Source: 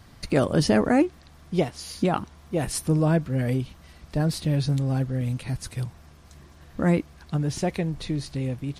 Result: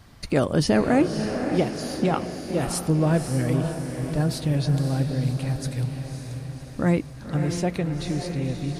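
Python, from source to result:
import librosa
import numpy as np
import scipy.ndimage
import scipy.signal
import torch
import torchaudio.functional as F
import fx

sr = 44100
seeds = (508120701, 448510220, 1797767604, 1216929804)

y = fx.echo_diffused(x, sr, ms=555, feedback_pct=54, wet_db=-6.5)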